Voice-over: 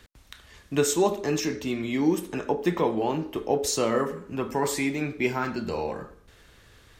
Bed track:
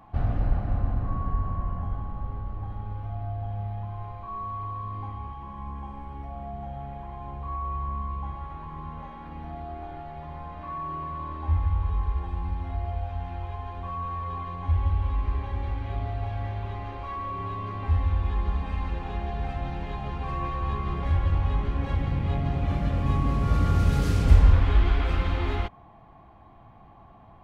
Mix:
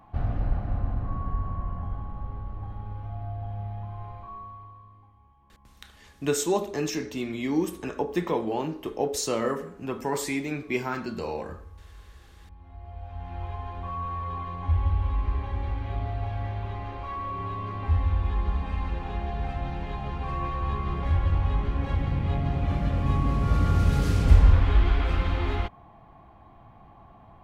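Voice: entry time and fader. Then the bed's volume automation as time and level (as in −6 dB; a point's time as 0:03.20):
5.50 s, −2.5 dB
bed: 0:04.18 −2 dB
0:05.12 −22 dB
0:12.37 −22 dB
0:13.43 0 dB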